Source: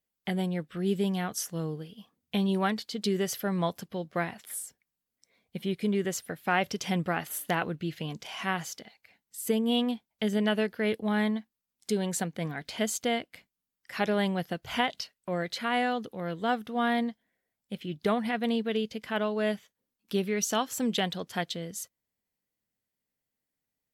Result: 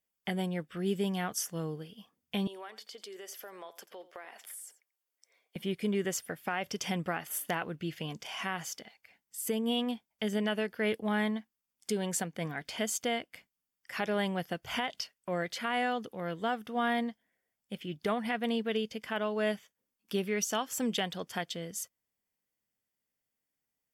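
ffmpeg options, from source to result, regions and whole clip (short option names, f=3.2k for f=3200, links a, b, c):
-filter_complex "[0:a]asettb=1/sr,asplit=3[a][b][c];[a]atrim=end=2.474[d];[b]atrim=start=2.47:end=5.56,asetpts=PTS-STARTPTS,afade=t=in:d=0.004:c=qsin,afade=t=out:st=3.086:d=0.004:c=qsin,highpass=f=370:w=0.5412,highpass=f=370:w=1.3066,acompressor=threshold=-42dB:ratio=5:attack=3.2:release=140:knee=1:detection=peak,aecho=1:1:87:0.15,atrim=end_sample=136269[e];[c]atrim=start=5.556[f];[d][e]acrossfade=d=0.004:c1=hsin:c2=qsin[g];[g][f]acrossfade=d=0.004:c1=qsin:c2=hsin,lowshelf=f=410:g=-4.5,bandreject=f=4k:w=6.5,alimiter=limit=-21dB:level=0:latency=1:release=181"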